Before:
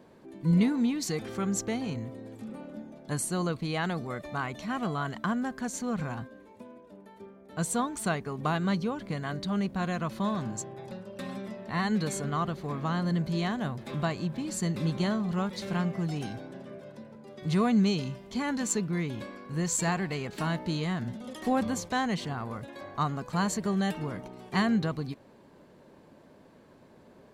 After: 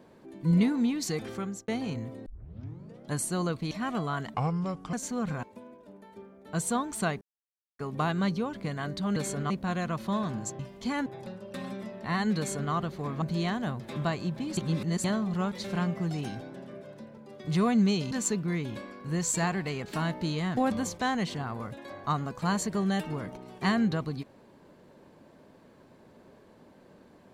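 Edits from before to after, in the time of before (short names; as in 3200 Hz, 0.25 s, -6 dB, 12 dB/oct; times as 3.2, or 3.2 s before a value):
1.29–1.68 fade out
2.26 tape start 0.85 s
3.71–4.59 cut
5.22–5.64 speed 71%
6.14–6.47 cut
8.25 insert silence 0.58 s
12.03–12.37 copy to 9.62
12.87–13.2 cut
14.55–15.02 reverse
18.09–18.56 move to 10.71
21.02–21.48 cut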